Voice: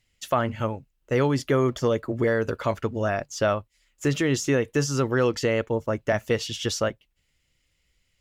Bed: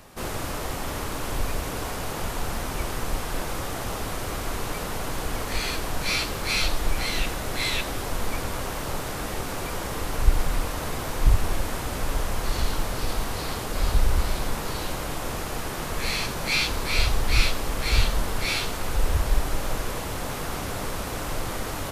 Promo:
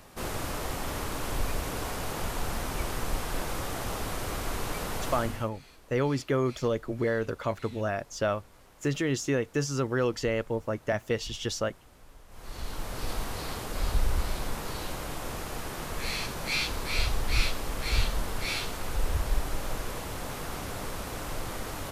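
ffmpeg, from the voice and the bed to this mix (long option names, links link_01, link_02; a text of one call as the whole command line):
ffmpeg -i stem1.wav -i stem2.wav -filter_complex "[0:a]adelay=4800,volume=-5dB[link_01];[1:a]volume=18dB,afade=type=out:start_time=5.09:duration=0.41:silence=0.0668344,afade=type=in:start_time=12.28:duration=0.83:silence=0.0891251[link_02];[link_01][link_02]amix=inputs=2:normalize=0" out.wav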